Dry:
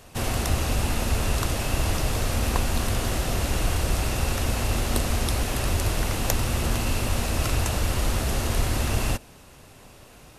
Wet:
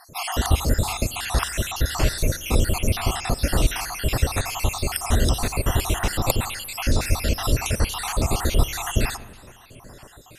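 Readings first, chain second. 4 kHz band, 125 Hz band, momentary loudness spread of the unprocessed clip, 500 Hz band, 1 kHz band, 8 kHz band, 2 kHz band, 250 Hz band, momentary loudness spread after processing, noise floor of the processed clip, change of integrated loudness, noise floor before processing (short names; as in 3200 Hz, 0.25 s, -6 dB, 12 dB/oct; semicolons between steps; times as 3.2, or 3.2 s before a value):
+2.5 dB, +1.5 dB, 1 LU, +1.5 dB, +2.5 dB, +2.0 dB, +2.0 dB, +1.0 dB, 4 LU, -48 dBFS, +2.0 dB, -49 dBFS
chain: random spectral dropouts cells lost 61%; spring tank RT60 1.7 s, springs 42/57 ms, chirp 45 ms, DRR 16.5 dB; gain +6.5 dB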